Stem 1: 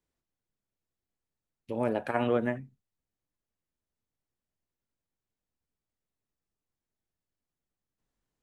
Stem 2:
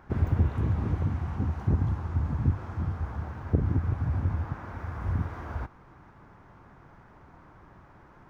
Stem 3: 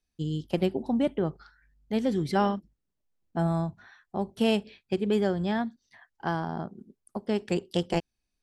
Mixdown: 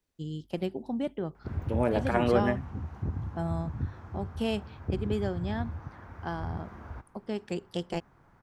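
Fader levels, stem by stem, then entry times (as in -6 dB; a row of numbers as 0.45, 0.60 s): +2.0, -8.0, -6.0 dB; 0.00, 1.35, 0.00 s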